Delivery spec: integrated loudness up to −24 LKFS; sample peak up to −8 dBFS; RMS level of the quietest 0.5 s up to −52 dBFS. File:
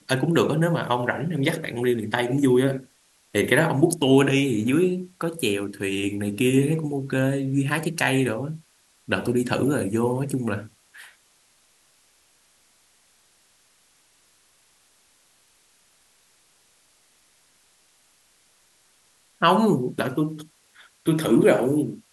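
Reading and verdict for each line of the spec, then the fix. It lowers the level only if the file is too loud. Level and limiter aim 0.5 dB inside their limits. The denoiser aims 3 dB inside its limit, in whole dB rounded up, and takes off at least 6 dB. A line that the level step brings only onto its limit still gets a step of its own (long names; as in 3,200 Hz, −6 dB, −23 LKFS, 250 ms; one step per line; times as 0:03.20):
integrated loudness −23.0 LKFS: out of spec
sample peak −4.0 dBFS: out of spec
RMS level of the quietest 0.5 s −61 dBFS: in spec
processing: level −1.5 dB
brickwall limiter −8.5 dBFS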